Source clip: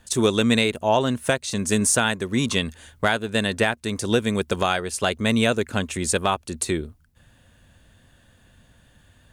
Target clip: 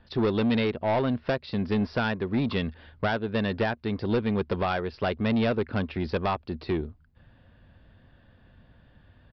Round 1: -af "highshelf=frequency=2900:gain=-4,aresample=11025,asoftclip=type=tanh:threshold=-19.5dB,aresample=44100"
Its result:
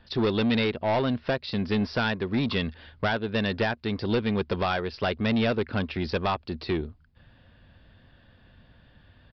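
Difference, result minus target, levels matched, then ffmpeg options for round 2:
8,000 Hz band +5.5 dB
-af "highshelf=frequency=2900:gain=-14.5,aresample=11025,asoftclip=type=tanh:threshold=-19.5dB,aresample=44100"

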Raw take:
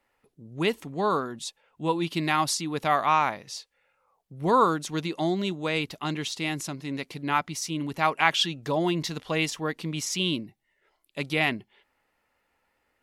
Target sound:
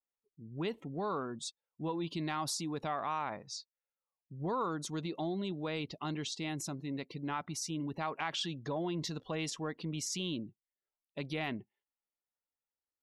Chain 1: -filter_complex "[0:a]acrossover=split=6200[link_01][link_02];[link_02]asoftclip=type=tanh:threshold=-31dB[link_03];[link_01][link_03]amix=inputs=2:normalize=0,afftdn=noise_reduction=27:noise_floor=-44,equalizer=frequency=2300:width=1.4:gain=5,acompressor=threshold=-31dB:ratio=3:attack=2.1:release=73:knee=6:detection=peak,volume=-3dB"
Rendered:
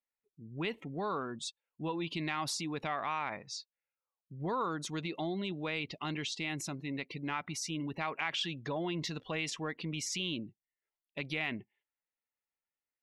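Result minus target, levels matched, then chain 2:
soft clipping: distortion +14 dB; 2,000 Hz band +4.5 dB
-filter_complex "[0:a]acrossover=split=6200[link_01][link_02];[link_02]asoftclip=type=tanh:threshold=-21dB[link_03];[link_01][link_03]amix=inputs=2:normalize=0,afftdn=noise_reduction=27:noise_floor=-44,equalizer=frequency=2300:width=1.4:gain=-5.5,acompressor=threshold=-31dB:ratio=3:attack=2.1:release=73:knee=6:detection=peak,volume=-3dB"

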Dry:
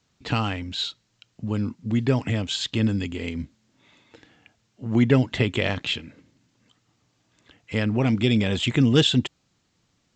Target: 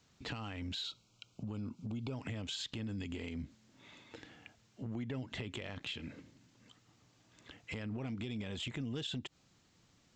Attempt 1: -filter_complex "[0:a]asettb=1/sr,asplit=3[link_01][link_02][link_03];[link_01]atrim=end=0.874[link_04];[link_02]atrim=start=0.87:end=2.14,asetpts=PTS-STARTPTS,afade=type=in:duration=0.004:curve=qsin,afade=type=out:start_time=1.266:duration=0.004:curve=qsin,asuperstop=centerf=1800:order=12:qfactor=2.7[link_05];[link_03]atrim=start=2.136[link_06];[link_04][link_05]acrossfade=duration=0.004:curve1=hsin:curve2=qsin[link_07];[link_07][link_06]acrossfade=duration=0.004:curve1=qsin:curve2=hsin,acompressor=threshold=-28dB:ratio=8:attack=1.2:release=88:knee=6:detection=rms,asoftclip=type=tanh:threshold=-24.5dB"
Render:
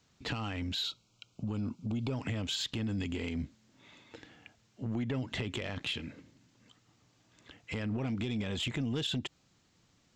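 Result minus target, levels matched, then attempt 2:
downward compressor: peak gain reduction −7 dB
-filter_complex "[0:a]asettb=1/sr,asplit=3[link_01][link_02][link_03];[link_01]atrim=end=0.874[link_04];[link_02]atrim=start=0.87:end=2.14,asetpts=PTS-STARTPTS,afade=type=in:duration=0.004:curve=qsin,afade=type=out:start_time=1.266:duration=0.004:curve=qsin,asuperstop=centerf=1800:order=12:qfactor=2.7[link_05];[link_03]atrim=start=2.136[link_06];[link_04][link_05]acrossfade=duration=0.004:curve1=hsin:curve2=qsin[link_07];[link_07][link_06]acrossfade=duration=0.004:curve1=qsin:curve2=hsin,acompressor=threshold=-36dB:ratio=8:attack=1.2:release=88:knee=6:detection=rms,asoftclip=type=tanh:threshold=-24.5dB"

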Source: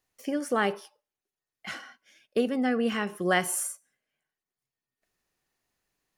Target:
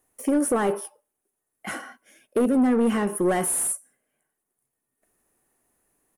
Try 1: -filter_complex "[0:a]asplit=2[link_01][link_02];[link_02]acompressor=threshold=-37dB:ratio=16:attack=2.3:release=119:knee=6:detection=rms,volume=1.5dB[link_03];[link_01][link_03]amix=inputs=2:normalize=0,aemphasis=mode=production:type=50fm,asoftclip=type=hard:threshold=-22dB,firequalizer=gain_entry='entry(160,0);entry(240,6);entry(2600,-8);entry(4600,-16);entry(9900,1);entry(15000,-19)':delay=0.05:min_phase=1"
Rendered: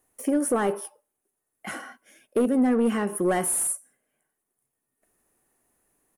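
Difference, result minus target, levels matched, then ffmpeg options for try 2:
downward compressor: peak gain reduction +11.5 dB
-filter_complex "[0:a]asplit=2[link_01][link_02];[link_02]acompressor=threshold=-25dB:ratio=16:attack=2.3:release=119:knee=6:detection=rms,volume=1.5dB[link_03];[link_01][link_03]amix=inputs=2:normalize=0,aemphasis=mode=production:type=50fm,asoftclip=type=hard:threshold=-22dB,firequalizer=gain_entry='entry(160,0);entry(240,6);entry(2600,-8);entry(4600,-16);entry(9900,1);entry(15000,-19)':delay=0.05:min_phase=1"

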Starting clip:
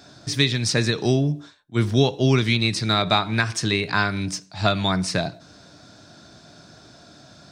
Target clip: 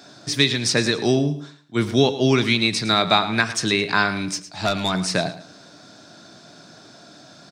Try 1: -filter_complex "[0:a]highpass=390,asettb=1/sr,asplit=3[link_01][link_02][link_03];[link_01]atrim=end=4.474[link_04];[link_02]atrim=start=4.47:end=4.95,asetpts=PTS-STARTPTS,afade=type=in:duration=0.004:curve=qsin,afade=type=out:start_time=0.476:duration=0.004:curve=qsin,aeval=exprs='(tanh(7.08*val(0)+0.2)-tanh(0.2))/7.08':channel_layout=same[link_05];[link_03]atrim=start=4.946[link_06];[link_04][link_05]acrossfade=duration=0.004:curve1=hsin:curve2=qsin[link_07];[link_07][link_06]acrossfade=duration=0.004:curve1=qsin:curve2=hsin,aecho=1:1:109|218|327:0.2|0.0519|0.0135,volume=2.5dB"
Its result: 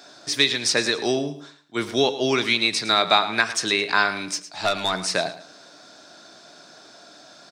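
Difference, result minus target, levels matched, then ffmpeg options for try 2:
125 Hz band −11.5 dB
-filter_complex "[0:a]highpass=170,asettb=1/sr,asplit=3[link_01][link_02][link_03];[link_01]atrim=end=4.474[link_04];[link_02]atrim=start=4.47:end=4.95,asetpts=PTS-STARTPTS,afade=type=in:duration=0.004:curve=qsin,afade=type=out:start_time=0.476:duration=0.004:curve=qsin,aeval=exprs='(tanh(7.08*val(0)+0.2)-tanh(0.2))/7.08':channel_layout=same[link_05];[link_03]atrim=start=4.946[link_06];[link_04][link_05]acrossfade=duration=0.004:curve1=hsin:curve2=qsin[link_07];[link_07][link_06]acrossfade=duration=0.004:curve1=qsin:curve2=hsin,aecho=1:1:109|218|327:0.2|0.0519|0.0135,volume=2.5dB"

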